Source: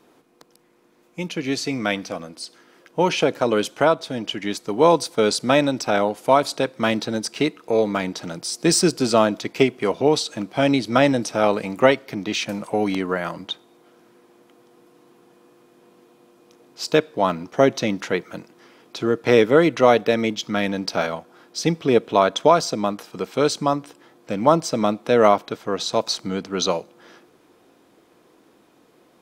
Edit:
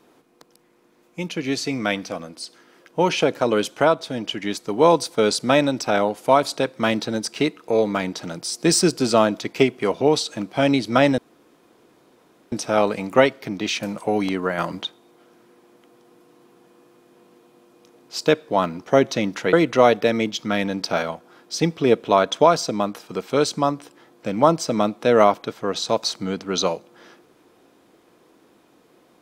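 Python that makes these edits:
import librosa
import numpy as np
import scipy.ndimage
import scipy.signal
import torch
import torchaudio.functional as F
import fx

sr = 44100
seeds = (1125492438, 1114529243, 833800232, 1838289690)

y = fx.edit(x, sr, fx.insert_room_tone(at_s=11.18, length_s=1.34),
    fx.clip_gain(start_s=13.24, length_s=0.25, db=4.5),
    fx.cut(start_s=18.19, length_s=1.38), tone=tone)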